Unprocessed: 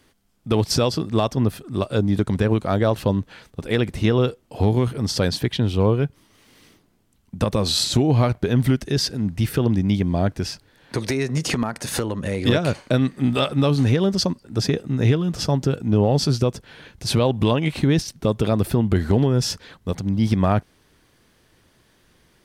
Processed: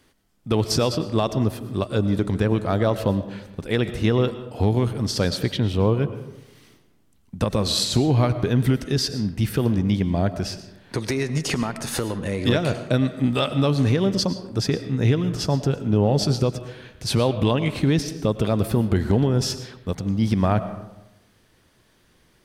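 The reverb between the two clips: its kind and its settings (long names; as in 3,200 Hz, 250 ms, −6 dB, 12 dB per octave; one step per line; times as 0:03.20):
comb and all-pass reverb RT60 0.98 s, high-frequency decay 0.5×, pre-delay 70 ms, DRR 11.5 dB
level −1.5 dB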